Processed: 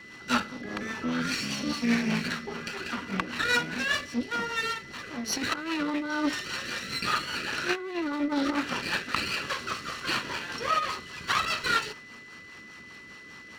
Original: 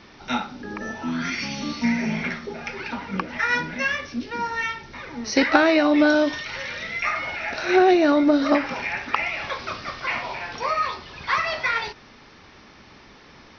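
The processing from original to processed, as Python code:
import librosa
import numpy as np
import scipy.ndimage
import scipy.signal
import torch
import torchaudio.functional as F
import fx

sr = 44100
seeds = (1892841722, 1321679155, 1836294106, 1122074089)

y = fx.lower_of_two(x, sr, delay_ms=0.7)
y = fx.highpass(y, sr, hz=190.0, slope=6)
y = fx.over_compress(y, sr, threshold_db=-23.0, ratio=-0.5)
y = fx.rotary(y, sr, hz=5.0)
y = y + 10.0 ** (-46.0 / 20.0) * np.sin(2.0 * np.pi * 2000.0 * np.arange(len(y)) / sr)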